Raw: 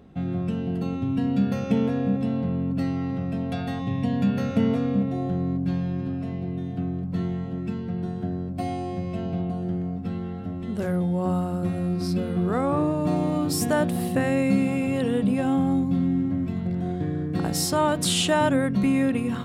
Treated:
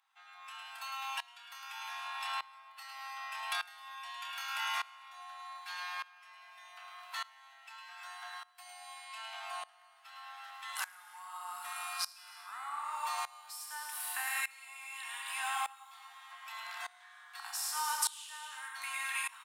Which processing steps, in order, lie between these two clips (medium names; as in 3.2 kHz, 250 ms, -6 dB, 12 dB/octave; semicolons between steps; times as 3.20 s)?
steep high-pass 850 Hz 72 dB/octave; treble shelf 7.6 kHz +9.5 dB; compression 4:1, threshold -41 dBFS, peak gain reduction 18 dB; Chebyshev shaper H 4 -39 dB, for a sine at -24 dBFS; doubling 28 ms -8 dB; on a send: delay 107 ms -7.5 dB; on the sum: gated-style reverb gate 360 ms flat, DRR 4.5 dB; sawtooth tremolo in dB swelling 0.83 Hz, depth 21 dB; trim +8 dB